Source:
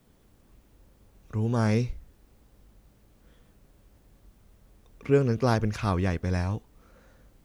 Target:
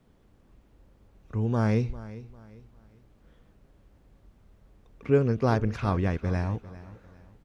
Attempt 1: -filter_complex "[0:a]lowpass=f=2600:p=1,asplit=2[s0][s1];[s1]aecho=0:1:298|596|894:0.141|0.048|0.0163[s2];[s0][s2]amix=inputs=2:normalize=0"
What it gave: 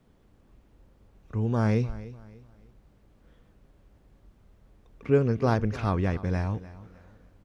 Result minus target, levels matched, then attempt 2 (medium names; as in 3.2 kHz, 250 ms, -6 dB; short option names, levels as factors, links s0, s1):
echo 101 ms early
-filter_complex "[0:a]lowpass=f=2600:p=1,asplit=2[s0][s1];[s1]aecho=0:1:399|798|1197:0.141|0.048|0.0163[s2];[s0][s2]amix=inputs=2:normalize=0"